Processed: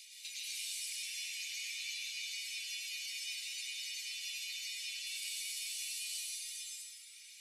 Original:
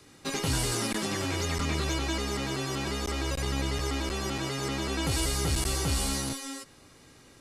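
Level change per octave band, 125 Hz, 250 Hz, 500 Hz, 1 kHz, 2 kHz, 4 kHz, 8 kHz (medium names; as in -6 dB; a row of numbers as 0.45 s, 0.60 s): under -40 dB, under -40 dB, under -40 dB, under -40 dB, -8.0 dB, -5.0 dB, -6.5 dB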